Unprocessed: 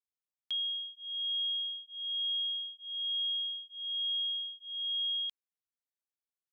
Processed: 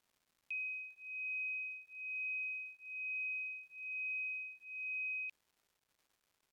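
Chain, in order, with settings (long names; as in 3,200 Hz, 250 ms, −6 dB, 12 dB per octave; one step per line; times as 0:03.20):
elliptic high-pass filter 2,900 Hz
surface crackle 570 per second −58 dBFS
pitch shifter −4.5 semitones
level −6.5 dB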